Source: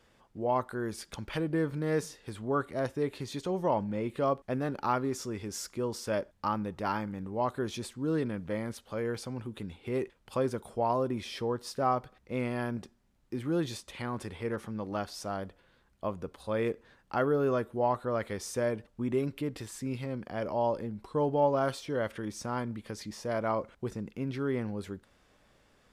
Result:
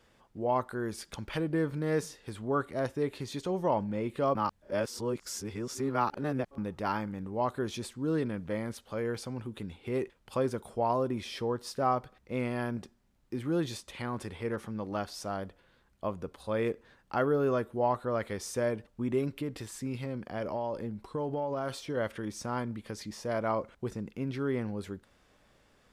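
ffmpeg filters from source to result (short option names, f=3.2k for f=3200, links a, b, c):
-filter_complex "[0:a]asettb=1/sr,asplit=3[a][b][c];[a]atrim=end=19.424[d];[b]atrim=start=19.42:end=21.97,asetpts=PTS-STARTPTS,afade=t=in:d=0.004:c=qsin,afade=t=out:st=2.546:d=0.004:c=qsin,acompressor=threshold=-29dB:ratio=6:attack=3.2:release=140:knee=1:detection=peak[e];[c]atrim=start=21.966[f];[d][e]acrossfade=d=0.004:c1=hsin:c2=qsin[g];[g][f]acrossfade=d=0.004:c1=qsin:c2=hsin,asplit=3[h][i][j];[h]atrim=end=4.352[k];[i]atrim=start=4.348:end=6.582,asetpts=PTS-STARTPTS,areverse[l];[j]atrim=start=6.578[m];[k][l]acrossfade=d=0.004:c1=hsin:c2=hsin[n];[n][m]acrossfade=d=0.004:c1=hsin:c2=hsin"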